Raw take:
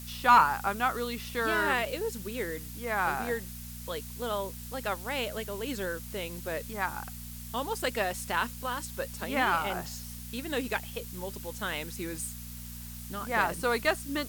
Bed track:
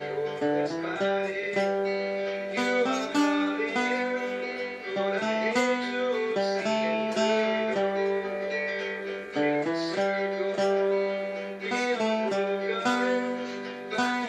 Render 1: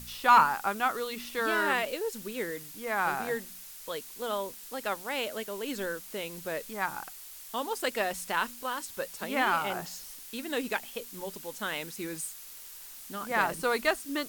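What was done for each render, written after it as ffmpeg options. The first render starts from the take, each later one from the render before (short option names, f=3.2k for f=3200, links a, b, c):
-af "bandreject=f=60:t=h:w=4,bandreject=f=120:t=h:w=4,bandreject=f=180:t=h:w=4,bandreject=f=240:t=h:w=4"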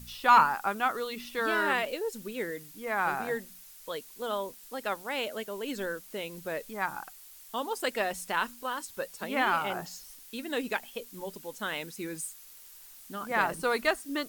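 -af "afftdn=nr=6:nf=-47"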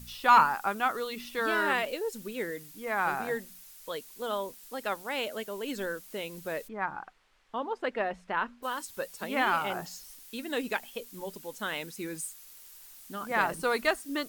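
-filter_complex "[0:a]asplit=3[a][b][c];[a]afade=t=out:st=6.67:d=0.02[d];[b]lowpass=2k,afade=t=in:st=6.67:d=0.02,afade=t=out:st=8.62:d=0.02[e];[c]afade=t=in:st=8.62:d=0.02[f];[d][e][f]amix=inputs=3:normalize=0"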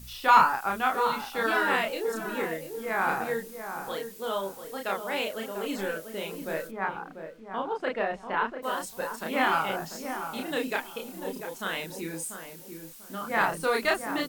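-filter_complex "[0:a]asplit=2[a][b];[b]adelay=31,volume=-2dB[c];[a][c]amix=inputs=2:normalize=0,asplit=2[d][e];[e]adelay=692,lowpass=f=1.1k:p=1,volume=-7dB,asplit=2[f][g];[g]adelay=692,lowpass=f=1.1k:p=1,volume=0.31,asplit=2[h][i];[i]adelay=692,lowpass=f=1.1k:p=1,volume=0.31,asplit=2[j][k];[k]adelay=692,lowpass=f=1.1k:p=1,volume=0.31[l];[d][f][h][j][l]amix=inputs=5:normalize=0"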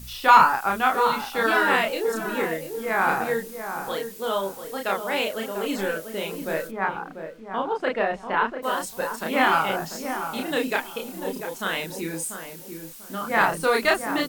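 -af "volume=5dB,alimiter=limit=-3dB:level=0:latency=1"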